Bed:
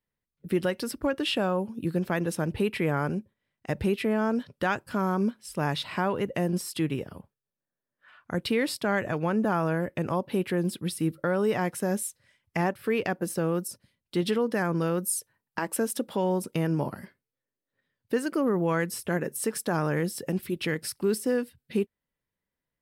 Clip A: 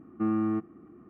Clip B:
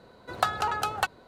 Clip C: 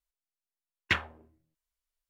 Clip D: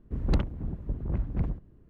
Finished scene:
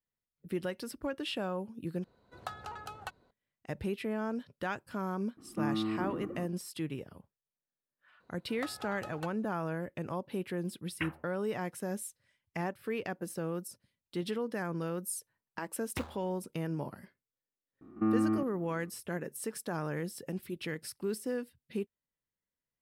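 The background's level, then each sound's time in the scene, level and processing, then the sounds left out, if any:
bed -9 dB
2.04 replace with B -16 dB + low shelf 220 Hz +6.5 dB
5.37 add A -6 dB + sustainer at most 23 dB/s
8.2 add B -18 dB
10.1 add C -9.5 dB + elliptic low-pass 2900 Hz
15.06 add C -4.5 dB + median filter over 25 samples
17.81 add A -1 dB + stepped spectrum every 50 ms
not used: D

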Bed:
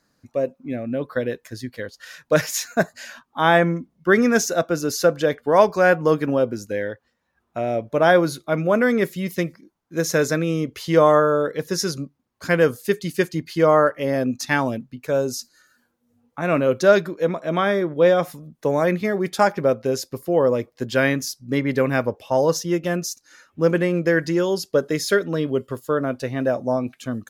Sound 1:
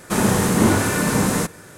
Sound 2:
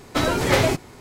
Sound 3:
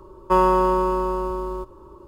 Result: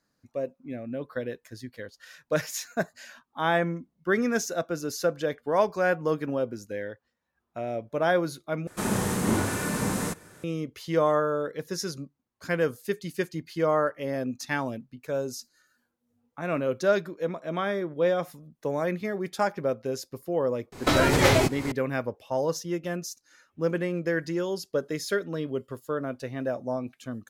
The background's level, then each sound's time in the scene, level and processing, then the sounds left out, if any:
bed -8.5 dB
8.67 replace with 1 -9 dB
20.72 add 2 -1.5 dB + recorder AGC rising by 50 dB/s
not used: 3

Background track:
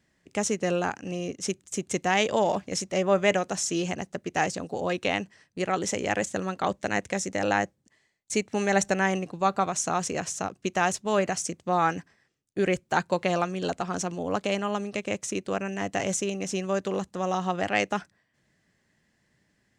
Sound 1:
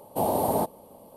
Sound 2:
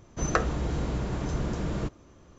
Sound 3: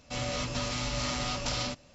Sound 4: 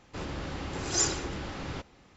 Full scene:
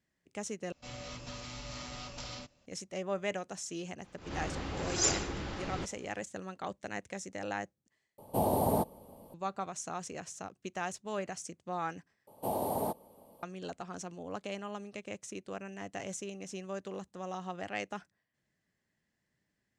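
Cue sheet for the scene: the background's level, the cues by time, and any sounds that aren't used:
background track -12.5 dB
0.72 replace with 3 -11.5 dB
4.04 add 4 -2 dB + attack slew limiter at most 130 dB/s
8.18 replace with 1 -5.5 dB + low shelf 170 Hz +10 dB
12.27 replace with 1 -8.5 dB
not used: 2

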